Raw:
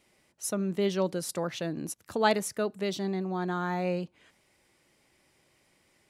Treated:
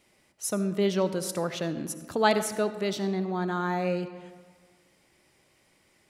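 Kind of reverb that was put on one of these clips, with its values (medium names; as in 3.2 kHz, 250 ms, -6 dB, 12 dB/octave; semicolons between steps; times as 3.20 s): algorithmic reverb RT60 1.6 s, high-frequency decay 0.55×, pre-delay 30 ms, DRR 11 dB; trim +2 dB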